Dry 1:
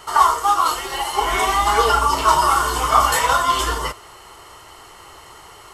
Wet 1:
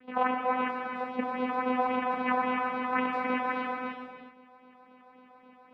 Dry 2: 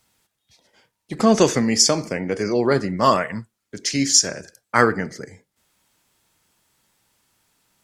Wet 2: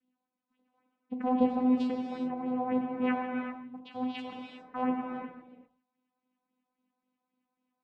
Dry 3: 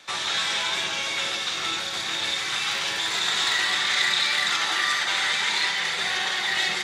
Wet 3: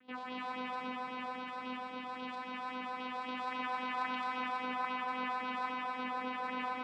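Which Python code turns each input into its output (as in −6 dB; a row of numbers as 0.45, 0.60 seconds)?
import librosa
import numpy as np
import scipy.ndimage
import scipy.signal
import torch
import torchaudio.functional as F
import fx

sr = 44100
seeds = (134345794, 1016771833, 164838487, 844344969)

y = fx.vocoder(x, sr, bands=4, carrier='saw', carrier_hz=253.0)
y = fx.phaser_stages(y, sr, stages=4, low_hz=280.0, high_hz=1700.0, hz=3.7, feedback_pct=30)
y = fx.air_absorb(y, sr, metres=490.0)
y = fx.rev_gated(y, sr, seeds[0], gate_ms=430, shape='flat', drr_db=1.5)
y = y * 10.0 ** (-8.0 / 20.0)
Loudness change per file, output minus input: −13.0, −12.5, −16.0 LU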